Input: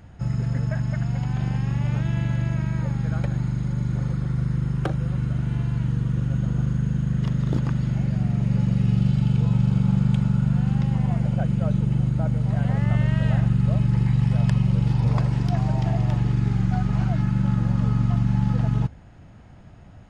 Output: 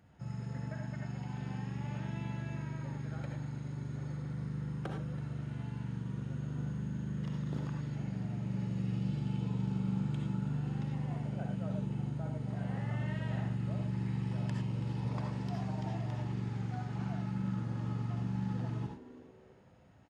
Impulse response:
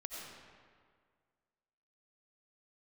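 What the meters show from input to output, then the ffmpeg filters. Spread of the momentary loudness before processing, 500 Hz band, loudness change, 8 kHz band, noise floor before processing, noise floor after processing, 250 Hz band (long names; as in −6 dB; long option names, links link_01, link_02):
5 LU, −10.5 dB, −14.5 dB, can't be measured, −45 dBFS, −55 dBFS, −13.0 dB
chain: -filter_complex "[0:a]highpass=110,asplit=4[link_01][link_02][link_03][link_04];[link_02]adelay=328,afreqshift=130,volume=-18dB[link_05];[link_03]adelay=656,afreqshift=260,volume=-27.4dB[link_06];[link_04]adelay=984,afreqshift=390,volume=-36.7dB[link_07];[link_01][link_05][link_06][link_07]amix=inputs=4:normalize=0[link_08];[1:a]atrim=start_sample=2205,afade=type=out:start_time=0.21:duration=0.01,atrim=end_sample=9702,asetrate=61740,aresample=44100[link_09];[link_08][link_09]afir=irnorm=-1:irlink=0,volume=-5.5dB"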